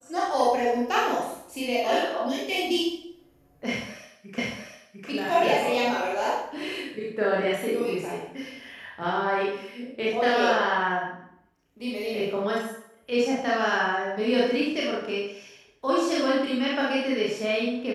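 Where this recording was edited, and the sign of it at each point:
4.38 s: repeat of the last 0.7 s

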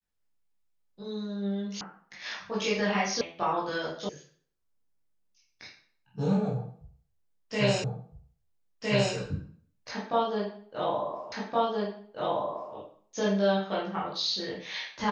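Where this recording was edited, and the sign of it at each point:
1.81 s: sound stops dead
3.21 s: sound stops dead
4.09 s: sound stops dead
7.84 s: repeat of the last 1.31 s
11.32 s: repeat of the last 1.42 s

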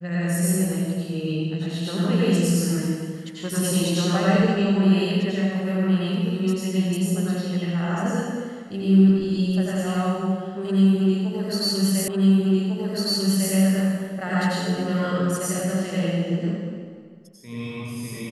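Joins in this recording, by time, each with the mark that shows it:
12.08 s: repeat of the last 1.45 s

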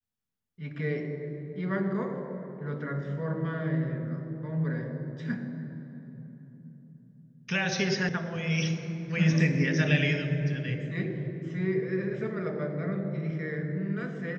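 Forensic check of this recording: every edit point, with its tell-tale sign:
8.09 s: sound stops dead

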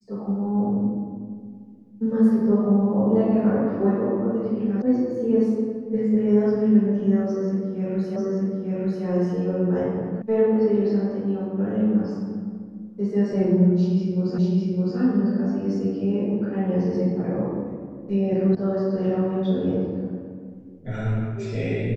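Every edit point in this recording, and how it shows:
4.82 s: sound stops dead
8.16 s: repeat of the last 0.89 s
10.22 s: sound stops dead
14.38 s: repeat of the last 0.61 s
18.55 s: sound stops dead

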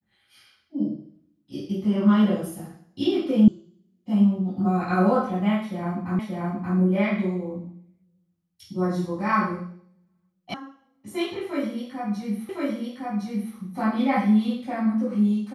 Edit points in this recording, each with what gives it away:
3.48 s: sound stops dead
6.19 s: repeat of the last 0.58 s
10.54 s: sound stops dead
12.49 s: repeat of the last 1.06 s

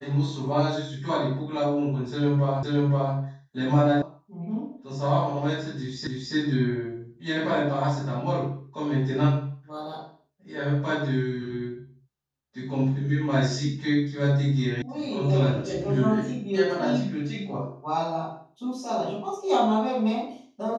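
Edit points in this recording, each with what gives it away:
2.63 s: repeat of the last 0.52 s
4.02 s: sound stops dead
6.07 s: repeat of the last 0.28 s
14.82 s: sound stops dead

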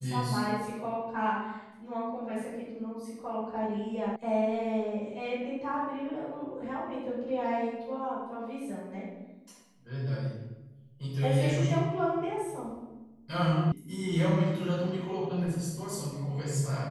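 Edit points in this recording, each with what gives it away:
4.16 s: sound stops dead
13.72 s: sound stops dead

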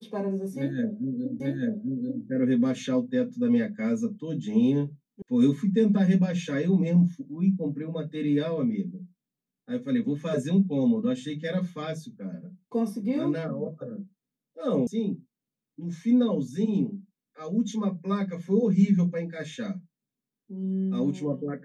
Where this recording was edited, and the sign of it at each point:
1.40 s: repeat of the last 0.84 s
5.22 s: sound stops dead
14.87 s: sound stops dead

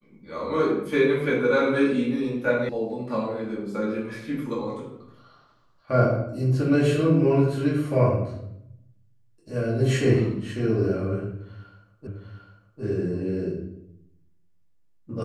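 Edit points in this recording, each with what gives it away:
2.69 s: sound stops dead
12.07 s: repeat of the last 0.75 s

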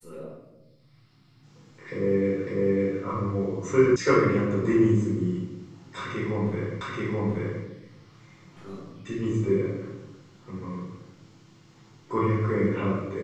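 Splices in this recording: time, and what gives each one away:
2.47 s: repeat of the last 0.55 s
3.96 s: sound stops dead
6.81 s: repeat of the last 0.83 s

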